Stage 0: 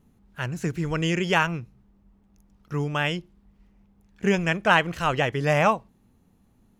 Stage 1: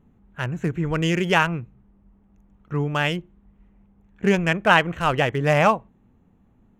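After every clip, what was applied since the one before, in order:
adaptive Wiener filter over 9 samples
level +3 dB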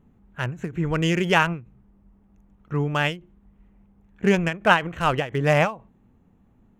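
every ending faded ahead of time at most 180 dB per second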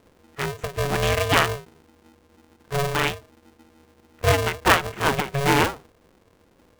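ring modulator with a square carrier 280 Hz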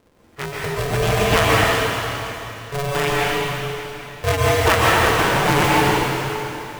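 dense smooth reverb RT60 3.2 s, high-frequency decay 1×, pre-delay 110 ms, DRR −6 dB
level −1.5 dB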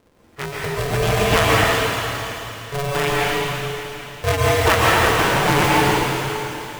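delay with a high-pass on its return 110 ms, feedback 81%, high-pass 2,700 Hz, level −12 dB

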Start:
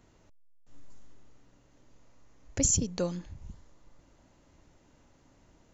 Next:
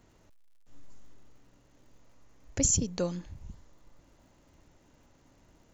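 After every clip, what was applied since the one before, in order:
surface crackle 170 per second −61 dBFS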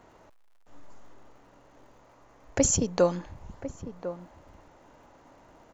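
parametric band 850 Hz +14.5 dB 2.8 octaves
slap from a distant wall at 180 metres, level −12 dB
level −1 dB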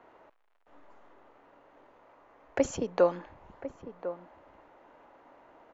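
three-way crossover with the lows and the highs turned down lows −14 dB, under 280 Hz, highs −21 dB, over 3,300 Hz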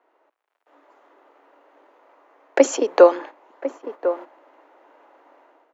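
noise gate −46 dBFS, range −10 dB
Butterworth high-pass 280 Hz 48 dB per octave
automatic gain control gain up to 12 dB
level +2 dB

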